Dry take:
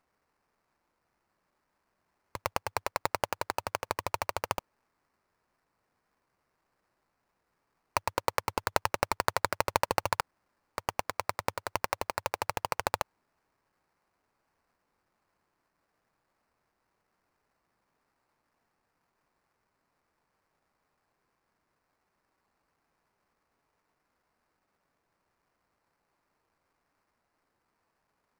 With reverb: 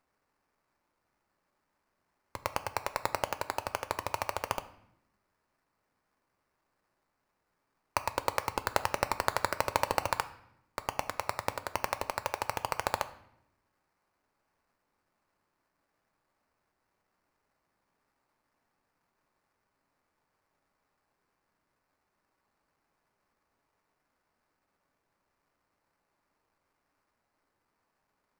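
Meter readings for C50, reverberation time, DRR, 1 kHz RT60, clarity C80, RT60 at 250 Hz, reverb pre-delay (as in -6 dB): 15.5 dB, 0.80 s, 10.5 dB, 0.75 s, 18.0 dB, 1.2 s, 3 ms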